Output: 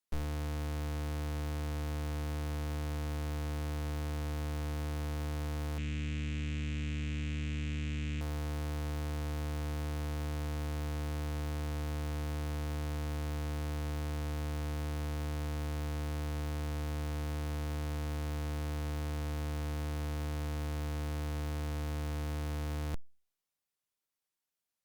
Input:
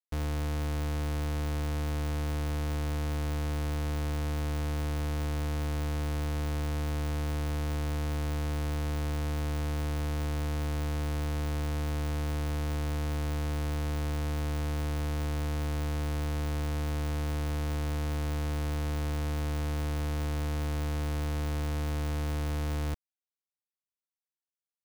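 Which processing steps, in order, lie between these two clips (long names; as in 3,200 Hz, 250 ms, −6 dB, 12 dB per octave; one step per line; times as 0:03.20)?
wavefolder on the positive side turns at −40.5 dBFS
0:05.78–0:08.21: drawn EQ curve 110 Hz 0 dB, 230 Hz +6 dB, 800 Hz −18 dB, 2,600 Hz +10 dB, 4,800 Hz −6 dB, 7,400 Hz +1 dB, 11,000 Hz −23 dB
level +5 dB
Opus 96 kbit/s 48,000 Hz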